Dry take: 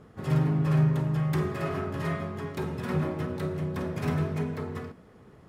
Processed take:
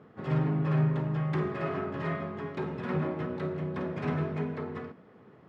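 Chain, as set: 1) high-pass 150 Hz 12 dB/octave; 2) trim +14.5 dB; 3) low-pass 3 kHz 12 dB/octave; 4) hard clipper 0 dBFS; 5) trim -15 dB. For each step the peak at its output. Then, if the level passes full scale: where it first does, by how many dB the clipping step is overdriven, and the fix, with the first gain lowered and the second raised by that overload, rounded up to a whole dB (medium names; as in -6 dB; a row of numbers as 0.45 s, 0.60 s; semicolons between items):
-16.5 dBFS, -2.0 dBFS, -2.0 dBFS, -2.0 dBFS, -17.0 dBFS; nothing clips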